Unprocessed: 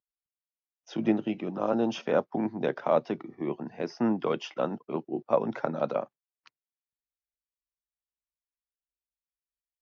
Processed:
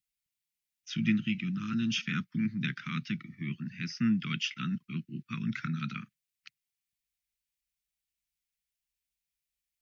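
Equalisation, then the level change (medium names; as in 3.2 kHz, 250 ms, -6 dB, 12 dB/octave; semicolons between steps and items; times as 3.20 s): Chebyshev band-stop 190–2200 Hz, order 3; peaking EQ 1.3 kHz +12.5 dB 0.66 oct; +7.0 dB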